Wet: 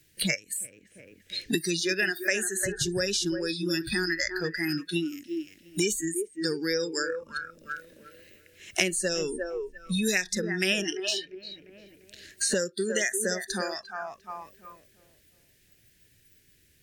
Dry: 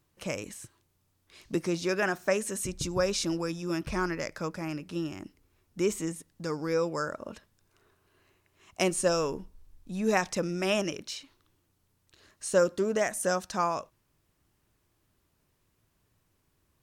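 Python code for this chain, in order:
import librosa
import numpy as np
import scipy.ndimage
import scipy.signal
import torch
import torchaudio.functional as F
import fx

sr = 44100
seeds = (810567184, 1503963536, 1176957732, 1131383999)

y = fx.curve_eq(x, sr, hz=(470.0, 1100.0, 1700.0), db=(0, -20, 8))
y = fx.echo_tape(y, sr, ms=348, feedback_pct=40, wet_db=-8.0, lp_hz=2200.0, drive_db=5.0, wow_cents=11)
y = fx.noise_reduce_blind(y, sr, reduce_db=25)
y = fx.band_squash(y, sr, depth_pct=100)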